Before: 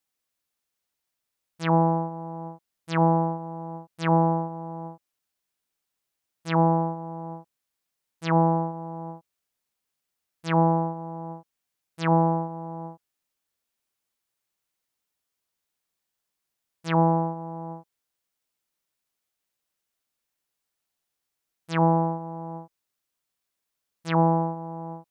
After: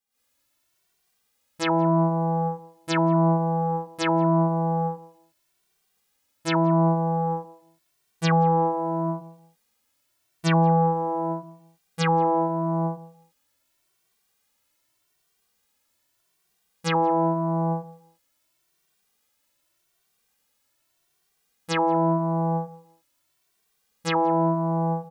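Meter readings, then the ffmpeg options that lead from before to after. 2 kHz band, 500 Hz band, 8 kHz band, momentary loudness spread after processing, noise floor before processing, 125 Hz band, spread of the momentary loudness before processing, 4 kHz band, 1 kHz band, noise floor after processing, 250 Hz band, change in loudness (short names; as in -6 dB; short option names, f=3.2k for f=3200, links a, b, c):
+4.0 dB, +3.5 dB, n/a, 10 LU, -83 dBFS, +2.0 dB, 18 LU, +7.5 dB, +2.5 dB, -72 dBFS, +2.5 dB, +1.5 dB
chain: -filter_complex "[0:a]alimiter=limit=-21.5dB:level=0:latency=1:release=122,dynaudnorm=f=100:g=3:m=15.5dB,asplit=2[a][b];[b]adelay=174,lowpass=f=1.2k:p=1,volume=-17.5dB,asplit=2[c][d];[d]adelay=174,lowpass=f=1.2k:p=1,volume=0.24[e];[a][c][e]amix=inputs=3:normalize=0,asplit=2[f][g];[g]adelay=2.1,afreqshift=0.84[h];[f][h]amix=inputs=2:normalize=1,volume=-1.5dB"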